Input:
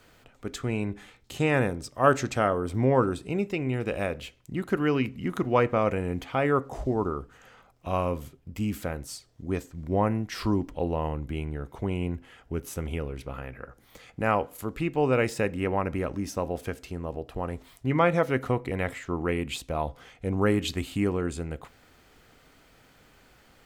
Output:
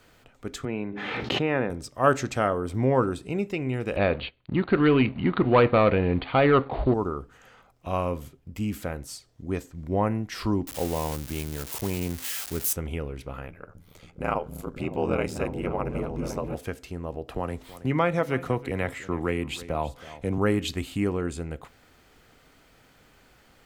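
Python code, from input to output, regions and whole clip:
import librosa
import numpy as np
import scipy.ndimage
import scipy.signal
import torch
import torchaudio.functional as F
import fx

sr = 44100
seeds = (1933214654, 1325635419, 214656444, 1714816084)

y = fx.chain(x, sr, fx.highpass(hz=180.0, slope=12),
    fx.air_absorb(metres=300.0),
    fx.pre_swell(db_per_s=24.0), at=(0.65, 1.7))
y = fx.chain(y, sr, fx.leveller(passes=2),
    fx.cheby1_lowpass(hz=4500.0, order=8), at=(3.96, 6.94))
y = fx.chain(y, sr, fx.crossing_spikes(level_db=-21.5),
    fx.highpass(hz=66.0, slope=12), at=(10.67, 12.73))
y = fx.chain(y, sr, fx.notch(hz=1800.0, q=5.6),
    fx.ring_mod(carrier_hz=41.0),
    fx.echo_opening(ms=278, hz=200, octaves=1, feedback_pct=70, wet_db=-3), at=(13.47, 16.55))
y = fx.chain(y, sr, fx.echo_single(ms=323, db=-19.0),
    fx.band_squash(depth_pct=40), at=(17.28, 20.38))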